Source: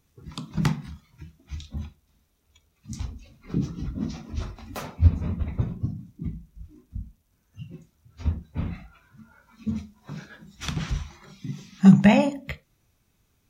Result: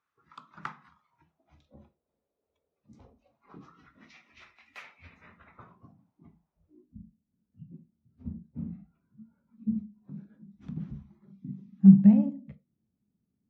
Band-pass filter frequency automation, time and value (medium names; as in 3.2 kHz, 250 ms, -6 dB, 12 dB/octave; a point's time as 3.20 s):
band-pass filter, Q 3.3
0.79 s 1.3 kHz
1.76 s 510 Hz
3.03 s 510 Hz
4.12 s 2.2 kHz
5.08 s 2.2 kHz
6.00 s 840 Hz
6.50 s 840 Hz
6.99 s 210 Hz